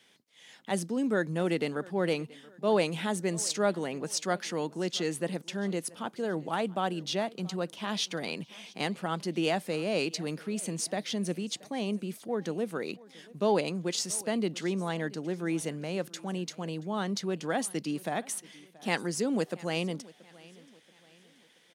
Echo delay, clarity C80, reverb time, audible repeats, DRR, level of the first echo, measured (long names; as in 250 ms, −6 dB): 679 ms, no reverb audible, no reverb audible, 2, no reverb audible, −22.0 dB